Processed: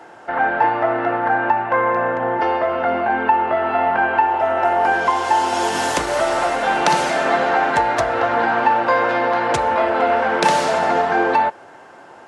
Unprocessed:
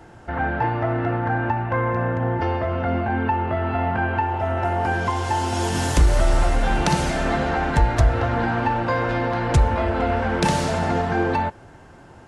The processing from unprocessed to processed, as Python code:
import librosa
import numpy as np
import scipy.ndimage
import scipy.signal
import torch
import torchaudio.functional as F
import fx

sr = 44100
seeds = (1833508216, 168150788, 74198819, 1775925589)

y = scipy.signal.sosfilt(scipy.signal.butter(2, 590.0, 'highpass', fs=sr, output='sos'), x)
y = fx.tilt_eq(y, sr, slope=-2.0)
y = F.gain(torch.from_numpy(y), 8.0).numpy()